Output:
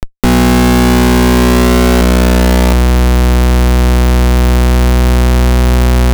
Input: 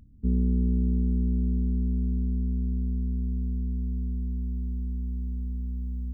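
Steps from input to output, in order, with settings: resonant low shelf 430 Hz +13 dB, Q 3; Schmitt trigger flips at -28.5 dBFS; trim +4.5 dB

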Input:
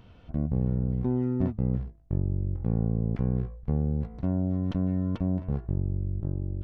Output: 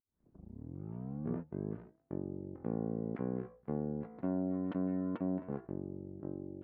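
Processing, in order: tape start-up on the opening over 2.03 s; Chebyshev band-pass 280–1800 Hz, order 2; trim -1.5 dB

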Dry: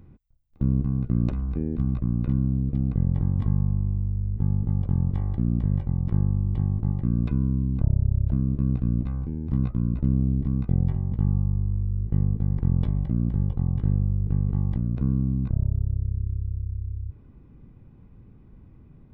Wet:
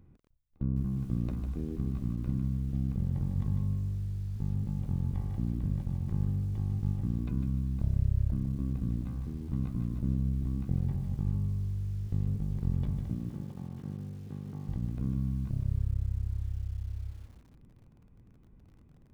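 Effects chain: 13.14–14.68 s: high-pass 190 Hz 12 dB/octave; bit-crushed delay 151 ms, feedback 35%, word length 8-bit, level -6.5 dB; trim -8.5 dB

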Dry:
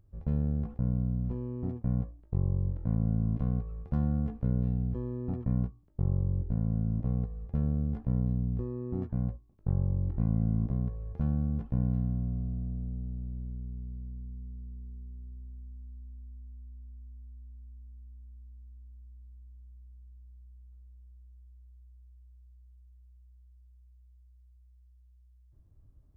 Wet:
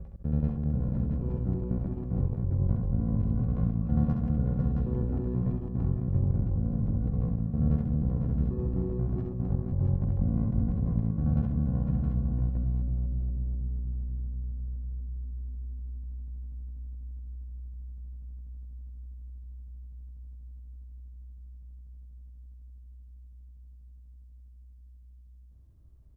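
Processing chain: slices played last to first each 81 ms, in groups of 3; multi-tap echo 45/67/305/502/668 ms -14.5/-5/-15/-6.5/-4 dB

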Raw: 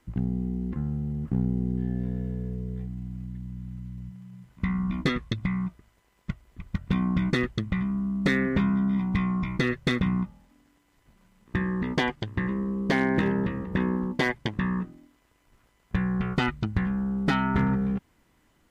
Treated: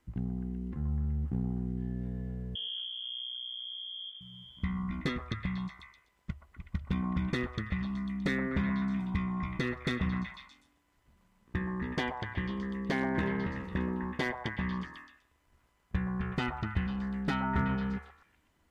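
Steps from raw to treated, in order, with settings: peaking EQ 73 Hz +13.5 dB 0.22 oct; 2.55–4.21 s: frequency inversion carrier 3.3 kHz; repeats whose band climbs or falls 124 ms, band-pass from 860 Hz, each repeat 0.7 oct, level -1.5 dB; trim -7.5 dB

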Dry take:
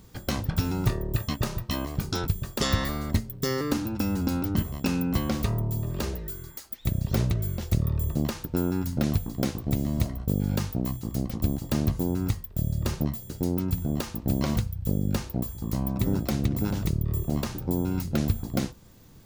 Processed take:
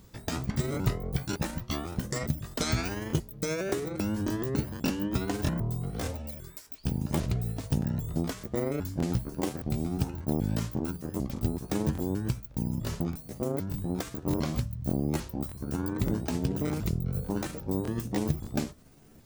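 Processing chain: sawtooth pitch modulation +8 st, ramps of 800 ms; crackling interface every 0.59 s, samples 1024, repeat, from 0.72 s; trim -2.5 dB

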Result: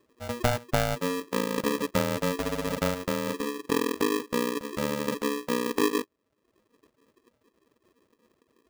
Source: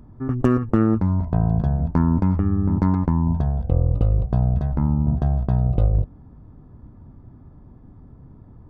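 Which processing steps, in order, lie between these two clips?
expander on every frequency bin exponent 1.5; reverb removal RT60 0.72 s; 1.57–1.98 s: waveshaping leveller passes 1; polarity switched at an audio rate 360 Hz; trim -5.5 dB

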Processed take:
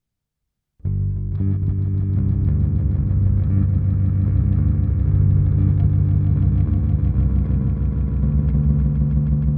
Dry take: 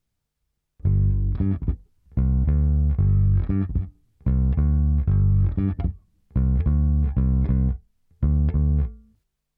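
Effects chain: peaking EQ 170 Hz +4 dB 1.9 oct; echo with a slow build-up 156 ms, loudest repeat 5, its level -5 dB; trim -4.5 dB

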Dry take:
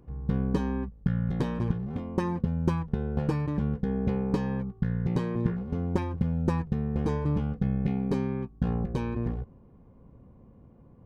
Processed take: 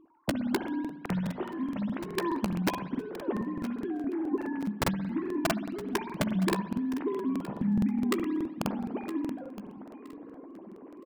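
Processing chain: formants replaced by sine waves; reverse; upward compressor, threshold -33 dBFS; reverse; integer overflow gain 16.5 dB; doubling 15 ms -11.5 dB; on a send: feedback delay 967 ms, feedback 26%, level -15 dB; on the sum: spring tank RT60 1.1 s, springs 58 ms, chirp 45 ms, DRR 9.5 dB; crackling interface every 0.21 s, samples 2048, repeat, from 0.59 s; trim -3.5 dB

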